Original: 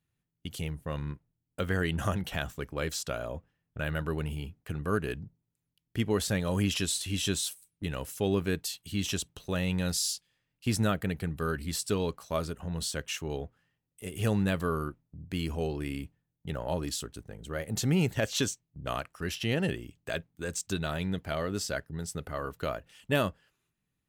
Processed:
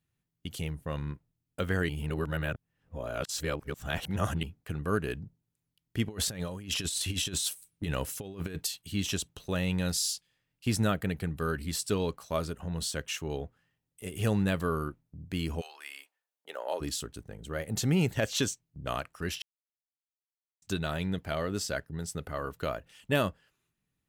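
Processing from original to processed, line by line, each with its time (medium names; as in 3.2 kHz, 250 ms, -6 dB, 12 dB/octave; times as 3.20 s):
1.89–4.43 s: reverse
6.09–8.67 s: compressor with a negative ratio -33 dBFS, ratio -0.5
15.60–16.80 s: high-pass 990 Hz -> 360 Hz 24 dB/octave
19.42–20.62 s: mute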